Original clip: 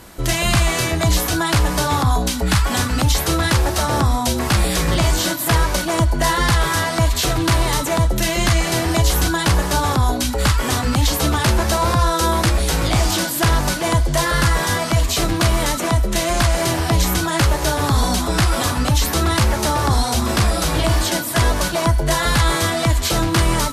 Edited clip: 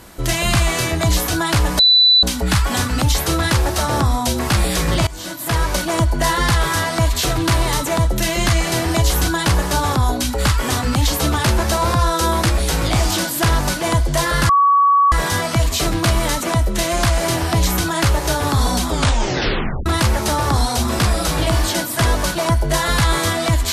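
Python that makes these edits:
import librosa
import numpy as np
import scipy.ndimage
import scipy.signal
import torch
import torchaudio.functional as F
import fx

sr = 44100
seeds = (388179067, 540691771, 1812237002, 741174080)

y = fx.edit(x, sr, fx.bleep(start_s=1.79, length_s=0.44, hz=3980.0, db=-8.0),
    fx.fade_in_from(start_s=5.07, length_s=0.67, floor_db=-20.5),
    fx.insert_tone(at_s=14.49, length_s=0.63, hz=1130.0, db=-9.5),
    fx.tape_stop(start_s=18.24, length_s=0.99), tone=tone)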